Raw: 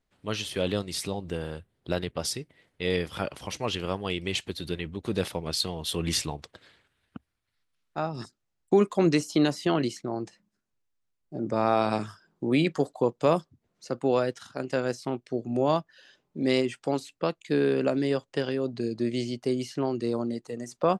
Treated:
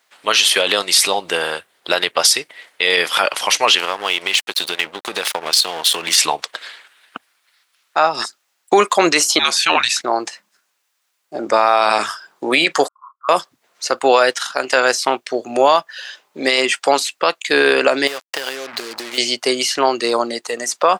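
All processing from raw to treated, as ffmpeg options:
-filter_complex "[0:a]asettb=1/sr,asplit=3[a][b][c];[a]atrim=end=3.784[d];[b]atrim=start=3.78:end=6.18,asetpts=PTS-STARTPTS,afade=t=in:d=0.004:c=qsin,afade=t=out:st=2.396:d=0.004:c=qsin,aeval=exprs='sgn(val(0))*max(abs(val(0))-0.00631,0)':c=same,acompressor=threshold=-31dB:ratio=5:attack=3.2:release=140:knee=1:detection=peak[e];[c]atrim=start=6.176[f];[d][e]acrossfade=d=0.004:c1=hsin:c2=qsin[g];[g][f]acrossfade=d=0.004:c1=qsin:c2=hsin,asettb=1/sr,asplit=3[h][i][j];[h]atrim=end=9.394[k];[i]atrim=start=9.39:end=10.01,asetpts=PTS-STARTPTS,afade=t=in:d=0.004:c=qsin,afade=t=out:st=0.616:d=0.004:c=qsin,highpass=400,afreqshift=-370,aeval=exprs='val(0)+0.00224*(sin(2*PI*60*n/s)+sin(2*PI*2*60*n/s)/2+sin(2*PI*3*60*n/s)/3+sin(2*PI*4*60*n/s)/4+sin(2*PI*5*60*n/s)/5)':c=same[l];[j]atrim=start=10.006[m];[k][l]acrossfade=d=0.004:c1=hsin:c2=qsin[n];[n][m]acrossfade=d=0.004:c1=qsin:c2=hsin,asettb=1/sr,asplit=3[o][p][q];[o]atrim=end=12.884[r];[p]atrim=start=12.88:end=13.29,asetpts=PTS-STARTPTS,afade=t=in:d=0.004:c=qsin,afade=t=out:st=0.406:d=0.004:c=qsin,asuperpass=centerf=1200:order=8:qfactor=3.4,aderivative,asplit=2[s][t];[t]adelay=29,volume=-7dB[u];[s][u]amix=inputs=2:normalize=0,atrim=end_sample=18081[v];[q]atrim=start=13.286[w];[r][v]acrossfade=d=0.004:c1=hsin:c2=qsin[x];[x][w]acrossfade=d=0.004:c1=qsin:c2=hsin,asettb=1/sr,asplit=3[y][z][aa];[y]atrim=end=18.074[ab];[z]atrim=start=18.07:end=19.18,asetpts=PTS-STARTPTS,afade=t=in:d=0.004:c=qsin,afade=t=out:st=1.106:d=0.004:c=qsin,acompressor=threshold=-35dB:ratio=16:attack=3.2:release=140:knee=1:detection=peak,aeval=exprs='val(0)+0.000316*(sin(2*PI*60*n/s)+sin(2*PI*2*60*n/s)/2+sin(2*PI*3*60*n/s)/3+sin(2*PI*4*60*n/s)/4+sin(2*PI*5*60*n/s)/5)':c=same,acrusher=bits=7:mix=0:aa=0.5[ac];[aa]atrim=start=19.176[ad];[ab][ac]acrossfade=d=0.004:c1=hsin:c2=qsin[ae];[ae][ad]acrossfade=d=0.004:c1=qsin:c2=hsin,highpass=900,alimiter=level_in=24.5dB:limit=-1dB:release=50:level=0:latency=1,volume=-1dB"

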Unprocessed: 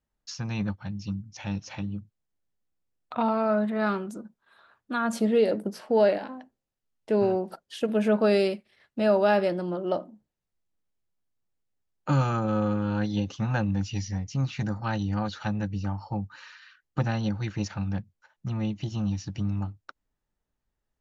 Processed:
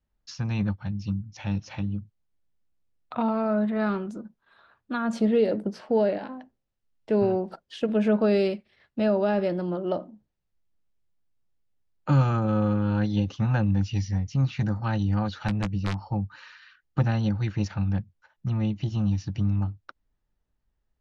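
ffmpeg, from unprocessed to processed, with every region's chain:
-filter_complex "[0:a]asettb=1/sr,asplit=3[a][b][c];[a]atrim=end=15.484[d];[b]atrim=start=15.48:end=16.07,asetpts=PTS-STARTPTS,afade=t=in:d=0.004:c=qsin,afade=t=out:st=0.586:d=0.004:c=qsin,aeval=exprs='(mod(10.6*val(0)+1,2)-1)/10.6':c=same,highshelf=f=8.4k:g=-6,asplit=2[e][f];[f]adelay=16,volume=-11dB[g];[e][g]amix=inputs=2:normalize=0,atrim=end_sample=26019[h];[c]atrim=start=16.066[i];[d][h]acrossfade=d=0.004:c1=hsin:c2=qsin[j];[j][i]acrossfade=d=0.004:c1=qsin:c2=hsin,lowpass=5.3k,lowshelf=f=130:g=8,acrossover=split=500[k][l];[l]acompressor=threshold=-27dB:ratio=6[m];[k][m]amix=inputs=2:normalize=0"

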